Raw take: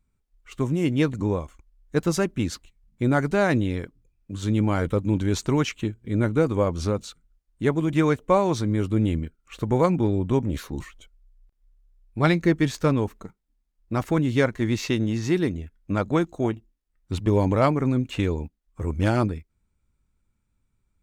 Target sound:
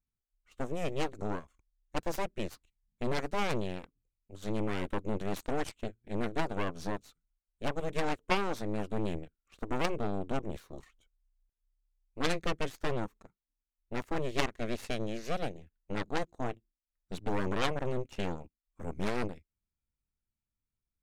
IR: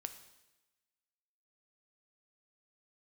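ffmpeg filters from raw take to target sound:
-af "aeval=exprs='0.473*(cos(1*acos(clip(val(0)/0.473,-1,1)))-cos(1*PI/2))+0.188*(cos(3*acos(clip(val(0)/0.473,-1,1)))-cos(3*PI/2))+0.0531*(cos(8*acos(clip(val(0)/0.473,-1,1)))-cos(8*PI/2))':c=same,volume=-4.5dB"

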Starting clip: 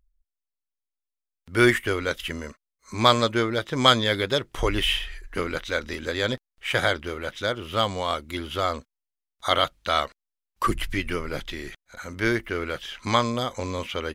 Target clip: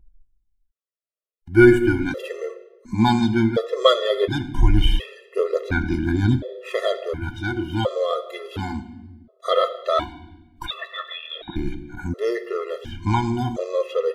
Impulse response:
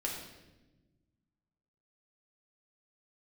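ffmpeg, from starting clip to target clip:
-filter_complex "[0:a]asettb=1/sr,asplit=3[a][b][c];[a]atrim=end=10.664[d];[b]atrim=start=10.66:end=11.56,asetpts=PTS-STARTPTS,afade=t=in:d=0.004:c=qsin,afade=t=out:st=0.896:d=0.004:c=qsin,lowpass=f=3.2k:t=q:w=0.5098,lowpass=f=3.2k:t=q:w=0.6013,lowpass=f=3.2k:t=q:w=0.9,lowpass=f=3.2k:t=q:w=2.563,afreqshift=-3800[e];[c]atrim=start=11.556[f];[d][e]acrossfade=d=0.004:c1=hsin:c2=qsin[g];[g][f]acrossfade=d=0.004:c1=qsin:c2=hsin,aphaser=in_gain=1:out_gain=1:delay=4.7:decay=0.48:speed=0.17:type=sinusoidal,tiltshelf=f=970:g=7.5,asplit=2[h][i];[1:a]atrim=start_sample=2205[j];[i][j]afir=irnorm=-1:irlink=0,volume=-8dB[k];[h][k]amix=inputs=2:normalize=0,afftfilt=real='re*gt(sin(2*PI*0.7*pts/sr)*(1-2*mod(floor(b*sr/1024/350),2)),0)':imag='im*gt(sin(2*PI*0.7*pts/sr)*(1-2*mod(floor(b*sr/1024/350),2)),0)':win_size=1024:overlap=0.75"

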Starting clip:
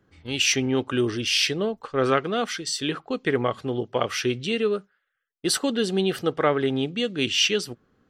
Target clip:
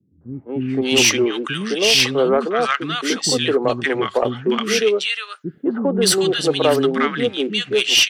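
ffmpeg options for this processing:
-filter_complex "[0:a]highpass=170,acrossover=split=260|1100[a][b][c];[b]adelay=210[d];[c]adelay=570[e];[a][d][e]amix=inputs=3:normalize=0,aeval=exprs='0.422*sin(PI/2*1.78*val(0)/0.422)':c=same"

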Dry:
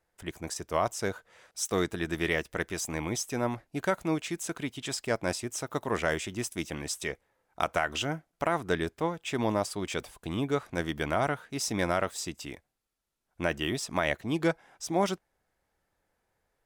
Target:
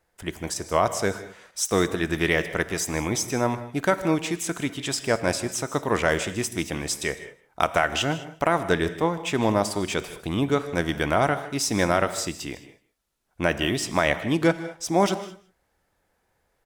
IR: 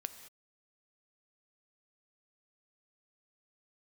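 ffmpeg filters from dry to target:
-filter_complex "[0:a]aecho=1:1:155:0.119,asplit=2[a][b];[1:a]atrim=start_sample=2205[c];[b][c]afir=irnorm=-1:irlink=0,volume=11dB[d];[a][d]amix=inputs=2:normalize=0,volume=-5dB"

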